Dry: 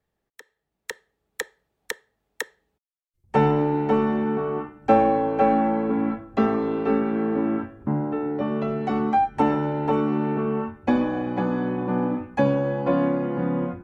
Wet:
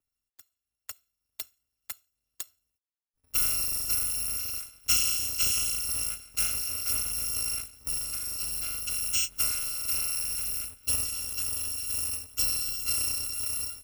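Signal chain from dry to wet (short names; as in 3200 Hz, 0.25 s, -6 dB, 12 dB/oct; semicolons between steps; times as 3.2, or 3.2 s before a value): FFT order left unsorted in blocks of 256 samples; gain -7.5 dB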